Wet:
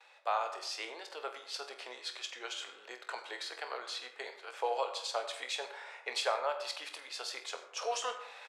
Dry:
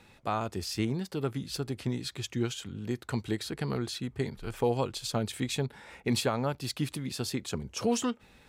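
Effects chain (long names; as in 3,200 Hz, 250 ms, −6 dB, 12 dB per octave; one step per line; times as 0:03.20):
noise gate with hold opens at −50 dBFS
Butterworth high-pass 540 Hz 36 dB per octave
reversed playback
upward compression, threshold −40 dBFS
reversed playback
high-frequency loss of the air 75 metres
ambience of single reflections 24 ms −10.5 dB, 48 ms −12 dB
on a send at −10 dB: convolution reverb RT60 0.80 s, pre-delay 67 ms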